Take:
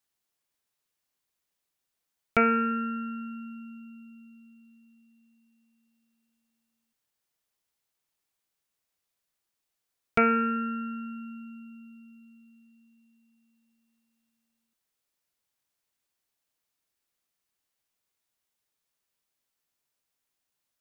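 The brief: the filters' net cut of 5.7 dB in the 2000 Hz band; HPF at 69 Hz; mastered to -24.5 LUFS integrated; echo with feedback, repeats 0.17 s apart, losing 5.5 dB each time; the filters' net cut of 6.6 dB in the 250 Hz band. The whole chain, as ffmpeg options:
-af "highpass=69,equalizer=f=250:t=o:g=-7,equalizer=f=2k:t=o:g=-7.5,aecho=1:1:170|340|510|680|850|1020|1190:0.531|0.281|0.149|0.079|0.0419|0.0222|0.0118,volume=7.5dB"

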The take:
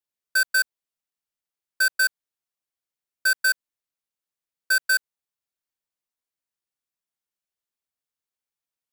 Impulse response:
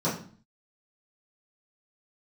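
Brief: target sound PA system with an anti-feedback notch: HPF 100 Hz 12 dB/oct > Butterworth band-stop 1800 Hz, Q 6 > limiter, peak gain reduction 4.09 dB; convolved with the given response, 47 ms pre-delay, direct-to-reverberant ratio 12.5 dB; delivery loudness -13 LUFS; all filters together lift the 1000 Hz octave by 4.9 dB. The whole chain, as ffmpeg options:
-filter_complex "[0:a]equalizer=f=1k:t=o:g=9,asplit=2[a][b];[1:a]atrim=start_sample=2205,adelay=47[c];[b][c]afir=irnorm=-1:irlink=0,volume=-23.5dB[d];[a][d]amix=inputs=2:normalize=0,highpass=100,asuperstop=centerf=1800:order=8:qfactor=6,volume=10dB,alimiter=limit=-2.5dB:level=0:latency=1"

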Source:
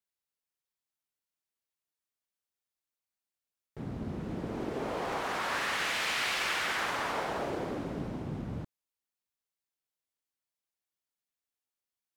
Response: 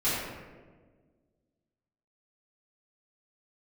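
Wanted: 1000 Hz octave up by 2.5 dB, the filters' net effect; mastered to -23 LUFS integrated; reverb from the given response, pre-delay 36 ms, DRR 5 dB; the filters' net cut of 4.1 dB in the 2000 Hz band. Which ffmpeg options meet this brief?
-filter_complex "[0:a]equalizer=f=1k:t=o:g=5,equalizer=f=2k:t=o:g=-7,asplit=2[a][b];[1:a]atrim=start_sample=2205,adelay=36[c];[b][c]afir=irnorm=-1:irlink=0,volume=-16.5dB[d];[a][d]amix=inputs=2:normalize=0,volume=9.5dB"

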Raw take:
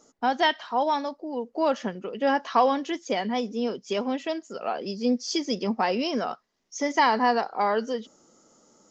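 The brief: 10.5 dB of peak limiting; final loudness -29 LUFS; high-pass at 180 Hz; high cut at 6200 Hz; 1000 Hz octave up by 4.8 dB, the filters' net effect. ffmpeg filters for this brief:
-af "highpass=180,lowpass=6.2k,equalizer=f=1k:t=o:g=6,volume=-2dB,alimiter=limit=-17dB:level=0:latency=1"

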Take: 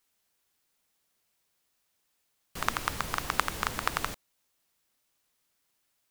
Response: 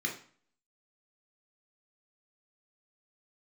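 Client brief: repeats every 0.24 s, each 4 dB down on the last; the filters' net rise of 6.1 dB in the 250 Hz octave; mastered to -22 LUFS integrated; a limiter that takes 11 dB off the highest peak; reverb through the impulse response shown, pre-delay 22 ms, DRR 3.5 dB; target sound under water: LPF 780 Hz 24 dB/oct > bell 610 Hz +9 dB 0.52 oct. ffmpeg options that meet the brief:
-filter_complex "[0:a]equalizer=f=250:t=o:g=7.5,alimiter=limit=-13dB:level=0:latency=1,aecho=1:1:240|480|720|960|1200|1440|1680|1920|2160:0.631|0.398|0.25|0.158|0.0994|0.0626|0.0394|0.0249|0.0157,asplit=2[a][b];[1:a]atrim=start_sample=2205,adelay=22[c];[b][c]afir=irnorm=-1:irlink=0,volume=-8dB[d];[a][d]amix=inputs=2:normalize=0,lowpass=f=780:w=0.5412,lowpass=f=780:w=1.3066,equalizer=f=610:t=o:w=0.52:g=9,volume=15dB"

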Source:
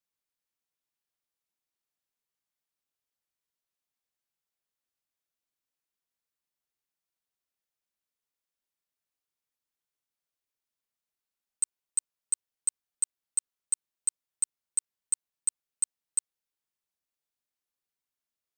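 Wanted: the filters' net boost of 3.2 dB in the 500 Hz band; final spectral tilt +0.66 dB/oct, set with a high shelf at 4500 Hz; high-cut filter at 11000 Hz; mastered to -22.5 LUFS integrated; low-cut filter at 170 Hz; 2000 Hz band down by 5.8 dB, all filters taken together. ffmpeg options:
-af "highpass=170,lowpass=11k,equalizer=f=500:t=o:g=4.5,equalizer=f=2k:t=o:g=-7,highshelf=f=4.5k:g=-3.5,volume=13dB"

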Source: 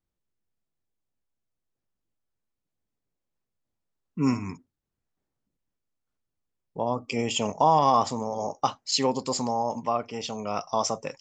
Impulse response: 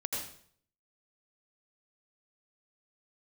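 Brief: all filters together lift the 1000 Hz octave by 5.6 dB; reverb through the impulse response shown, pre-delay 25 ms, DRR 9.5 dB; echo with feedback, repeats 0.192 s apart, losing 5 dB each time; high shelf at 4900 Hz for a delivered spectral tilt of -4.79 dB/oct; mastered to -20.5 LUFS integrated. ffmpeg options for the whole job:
-filter_complex "[0:a]equalizer=f=1k:t=o:g=7,highshelf=f=4.9k:g=-4,aecho=1:1:192|384|576|768|960|1152|1344:0.562|0.315|0.176|0.0988|0.0553|0.031|0.0173,asplit=2[a][b];[1:a]atrim=start_sample=2205,adelay=25[c];[b][c]afir=irnorm=-1:irlink=0,volume=-13dB[d];[a][d]amix=inputs=2:normalize=0,volume=0.5dB"

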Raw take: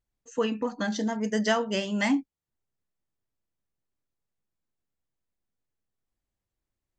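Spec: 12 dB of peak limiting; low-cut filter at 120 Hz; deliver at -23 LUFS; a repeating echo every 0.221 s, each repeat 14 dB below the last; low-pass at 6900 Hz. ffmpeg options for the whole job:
-af "highpass=120,lowpass=6.9k,alimiter=limit=-23.5dB:level=0:latency=1,aecho=1:1:221|442:0.2|0.0399,volume=9.5dB"

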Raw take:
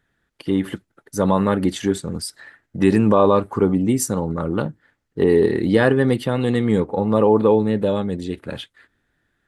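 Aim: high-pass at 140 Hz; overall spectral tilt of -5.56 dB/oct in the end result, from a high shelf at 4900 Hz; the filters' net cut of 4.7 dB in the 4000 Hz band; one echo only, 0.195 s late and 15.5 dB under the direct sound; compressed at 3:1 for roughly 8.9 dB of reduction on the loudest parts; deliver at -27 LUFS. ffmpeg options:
-af "highpass=140,equalizer=f=4k:t=o:g=-3.5,highshelf=f=4.9k:g=-6,acompressor=threshold=-23dB:ratio=3,aecho=1:1:195:0.168"

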